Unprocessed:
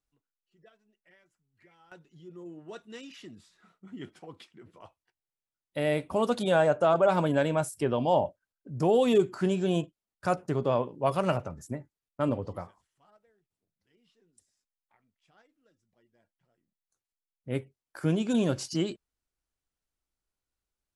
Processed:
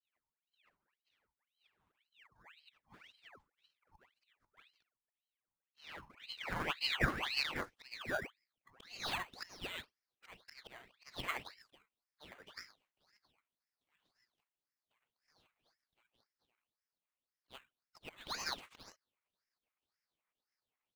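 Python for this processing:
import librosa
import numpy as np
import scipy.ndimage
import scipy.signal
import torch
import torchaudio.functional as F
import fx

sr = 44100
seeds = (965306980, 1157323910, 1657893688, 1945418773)

p1 = fx.auto_swell(x, sr, attack_ms=326.0)
p2 = fx.high_shelf(p1, sr, hz=5200.0, db=-10.0)
p3 = fx.hum_notches(p2, sr, base_hz=60, count=5)
p4 = fx.spec_gate(p3, sr, threshold_db=-20, keep='weak')
p5 = fx.filter_sweep_bandpass(p4, sr, from_hz=460.0, to_hz=1700.0, start_s=5.93, end_s=9.21, q=3.3)
p6 = fx.sample_hold(p5, sr, seeds[0], rate_hz=5300.0, jitter_pct=0)
p7 = p5 + (p6 * librosa.db_to_amplitude(-8.0))
p8 = fx.ring_lfo(p7, sr, carrier_hz=2000.0, swing_pct=80, hz=1.9)
y = p8 * librosa.db_to_amplitude(13.5)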